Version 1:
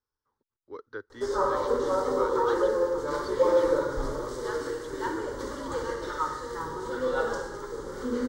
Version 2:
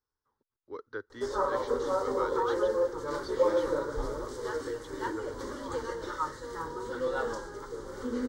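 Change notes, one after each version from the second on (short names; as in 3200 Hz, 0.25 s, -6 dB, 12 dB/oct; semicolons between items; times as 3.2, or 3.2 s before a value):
reverb: off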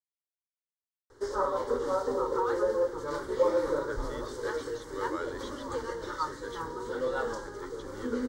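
speech: entry +2.95 s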